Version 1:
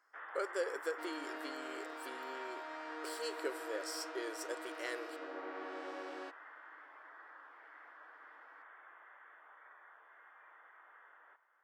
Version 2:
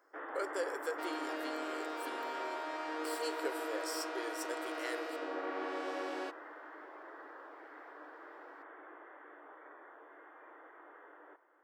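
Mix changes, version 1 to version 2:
first sound: remove high-pass filter 1,200 Hz 12 dB per octave
second sound +6.0 dB
master: add high-shelf EQ 12,000 Hz +8.5 dB

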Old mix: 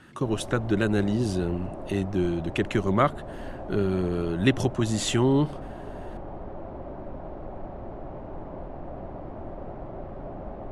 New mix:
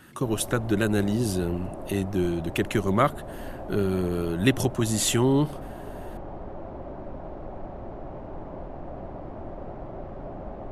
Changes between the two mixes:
speech: remove low-pass filter 12,000 Hz 24 dB per octave
master: remove high-frequency loss of the air 64 metres

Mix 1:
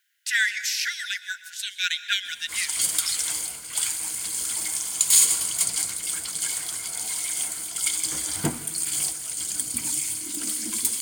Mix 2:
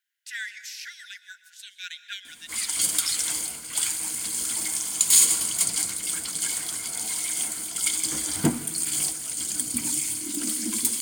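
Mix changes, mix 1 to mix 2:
speech −12.0 dB
background: add parametric band 250 Hz +7.5 dB 0.97 octaves

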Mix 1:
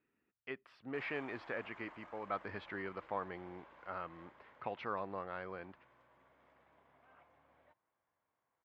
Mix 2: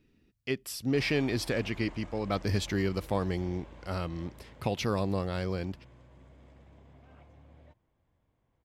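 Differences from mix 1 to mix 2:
speech: remove high-frequency loss of the air 380 metres
master: remove resonant band-pass 1,300 Hz, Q 1.3

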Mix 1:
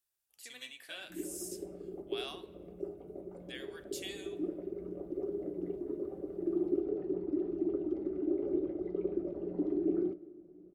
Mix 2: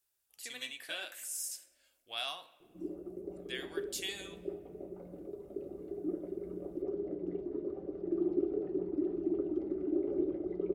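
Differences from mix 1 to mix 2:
speech +5.0 dB
background: entry +1.65 s

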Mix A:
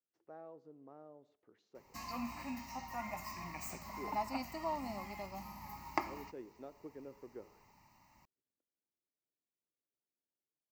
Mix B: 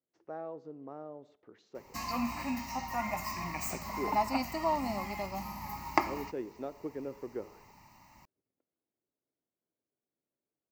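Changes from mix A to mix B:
speech +10.5 dB
background +8.0 dB

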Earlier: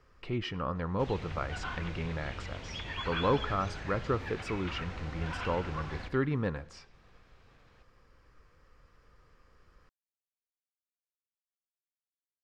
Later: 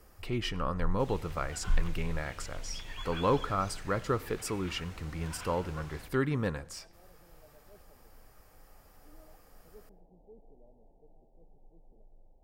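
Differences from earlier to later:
first sound: unmuted
second sound −8.5 dB
master: remove high-frequency loss of the air 160 metres

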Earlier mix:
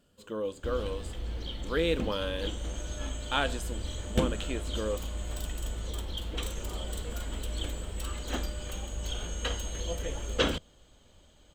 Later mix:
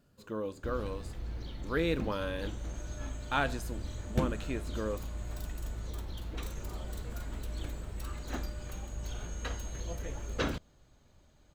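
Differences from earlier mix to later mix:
background −3.5 dB
master: add thirty-one-band graphic EQ 125 Hz +10 dB, 500 Hz −5 dB, 3,150 Hz −12 dB, 8,000 Hz −9 dB

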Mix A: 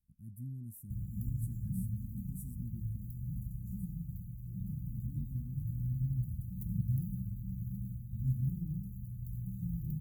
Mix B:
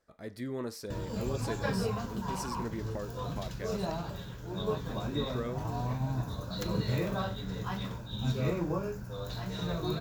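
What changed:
speech −3.0 dB
master: remove inverse Chebyshev band-stop filter 430–5,100 Hz, stop band 50 dB

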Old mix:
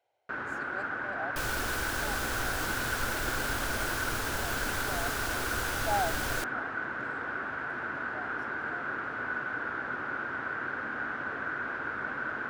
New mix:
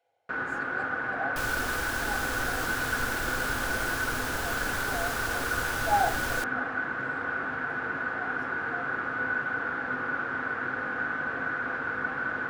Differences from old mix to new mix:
speech −3.5 dB
reverb: on, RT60 0.35 s

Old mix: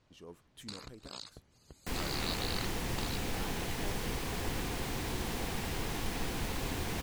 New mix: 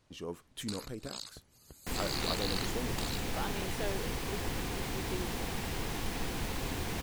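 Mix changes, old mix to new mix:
speech +10.0 dB
first sound: remove high-frequency loss of the air 71 metres

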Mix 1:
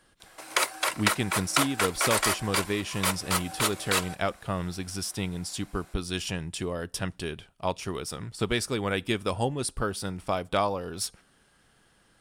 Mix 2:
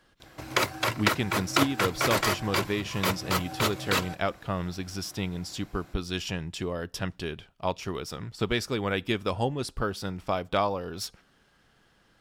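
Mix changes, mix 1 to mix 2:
background: remove high-pass filter 550 Hz 12 dB per octave
master: add parametric band 9,200 Hz −13.5 dB 0.44 octaves

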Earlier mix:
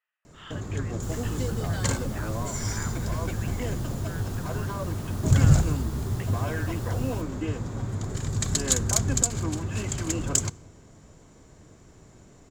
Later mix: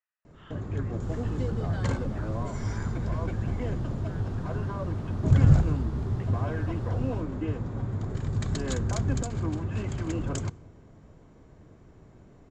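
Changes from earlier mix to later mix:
speech −4.0 dB
master: add head-to-tape spacing loss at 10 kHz 25 dB

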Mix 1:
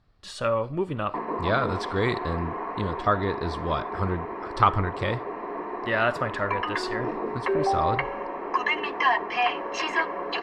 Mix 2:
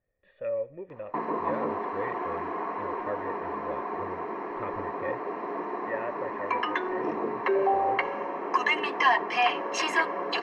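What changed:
speech: add formant resonators in series e
master: remove low-pass filter 5,300 Hz 12 dB per octave

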